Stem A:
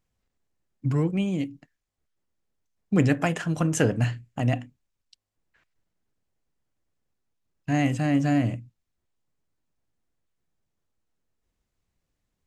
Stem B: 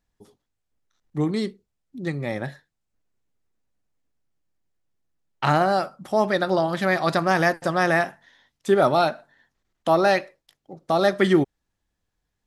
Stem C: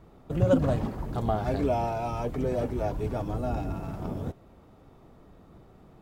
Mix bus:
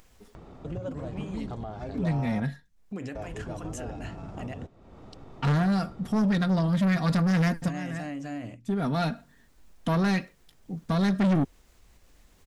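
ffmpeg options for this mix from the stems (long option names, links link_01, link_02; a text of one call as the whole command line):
ffmpeg -i stem1.wav -i stem2.wav -i stem3.wav -filter_complex "[0:a]equalizer=frequency=130:width_type=o:width=1.4:gain=-8.5,alimiter=limit=-19.5dB:level=0:latency=1:release=46,volume=-8dB,asplit=2[link_01][link_02];[1:a]aecho=1:1:4.3:0.58,asubboost=boost=11.5:cutoff=170,volume=-4dB[link_03];[2:a]lowpass=frequency=8000:width=0.5412,lowpass=frequency=8000:width=1.3066,adelay=350,volume=-5.5dB,asplit=3[link_04][link_05][link_06];[link_04]atrim=end=2.4,asetpts=PTS-STARTPTS,afade=type=out:start_time=2.396:duration=0.004:curve=hsin[link_07];[link_05]atrim=start=2.4:end=3.15,asetpts=PTS-STARTPTS,volume=0[link_08];[link_06]atrim=start=3.15,asetpts=PTS-STARTPTS,afade=type=in:duration=0.004:curve=hsin[link_09];[link_07][link_08][link_09]concat=n=3:v=0:a=1[link_10];[link_02]apad=whole_len=549735[link_11];[link_03][link_11]sidechaincompress=threshold=-50dB:ratio=6:attack=6:release=525[link_12];[link_01][link_10]amix=inputs=2:normalize=0,acompressor=mode=upward:threshold=-35dB:ratio=2.5,alimiter=level_in=1.5dB:limit=-24dB:level=0:latency=1:release=274,volume=-1.5dB,volume=0dB[link_13];[link_12][link_13]amix=inputs=2:normalize=0,asoftclip=type=tanh:threshold=-20dB" out.wav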